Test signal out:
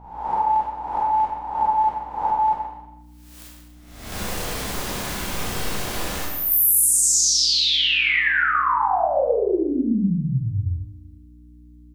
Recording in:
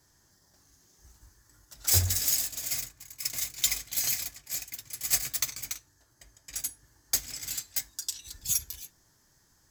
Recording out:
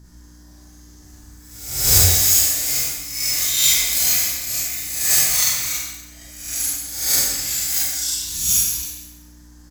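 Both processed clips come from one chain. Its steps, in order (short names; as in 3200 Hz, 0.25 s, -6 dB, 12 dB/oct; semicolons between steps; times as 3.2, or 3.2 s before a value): spectral swells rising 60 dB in 0.77 s; speakerphone echo 0.12 s, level -9 dB; hum 60 Hz, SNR 18 dB; Schroeder reverb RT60 0.91 s, combs from 31 ms, DRR -6 dB; gain +2 dB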